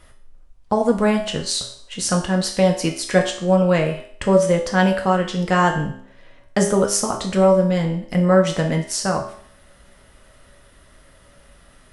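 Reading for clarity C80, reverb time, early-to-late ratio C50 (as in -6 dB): 11.5 dB, 0.60 s, 8.5 dB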